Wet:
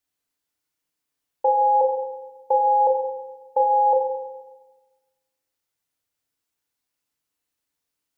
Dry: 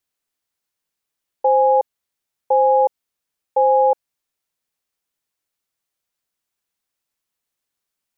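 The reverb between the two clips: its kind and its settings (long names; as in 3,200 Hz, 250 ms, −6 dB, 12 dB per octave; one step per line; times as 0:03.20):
feedback delay network reverb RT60 1.2 s, low-frequency decay 1.4×, high-frequency decay 0.8×, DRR 1 dB
level −3 dB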